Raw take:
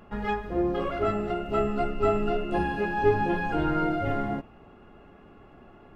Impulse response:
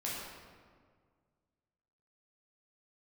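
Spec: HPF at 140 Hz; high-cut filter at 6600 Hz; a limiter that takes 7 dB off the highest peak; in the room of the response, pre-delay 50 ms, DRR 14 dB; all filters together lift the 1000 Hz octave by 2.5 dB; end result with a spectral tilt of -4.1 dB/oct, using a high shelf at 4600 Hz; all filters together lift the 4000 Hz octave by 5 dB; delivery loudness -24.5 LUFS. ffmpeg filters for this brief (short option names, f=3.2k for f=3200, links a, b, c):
-filter_complex "[0:a]highpass=140,lowpass=6.6k,equalizer=f=1k:t=o:g=3,equalizer=f=4k:t=o:g=5.5,highshelf=f=4.6k:g=5,alimiter=limit=-18dB:level=0:latency=1,asplit=2[a][b];[1:a]atrim=start_sample=2205,adelay=50[c];[b][c]afir=irnorm=-1:irlink=0,volume=-17dB[d];[a][d]amix=inputs=2:normalize=0,volume=3.5dB"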